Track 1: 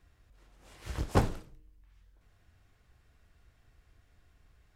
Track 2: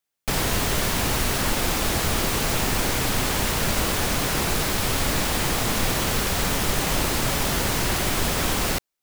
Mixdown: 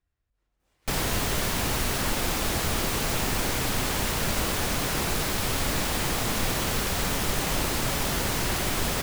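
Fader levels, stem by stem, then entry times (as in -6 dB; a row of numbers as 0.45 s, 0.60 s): -17.0 dB, -3.5 dB; 0.00 s, 0.60 s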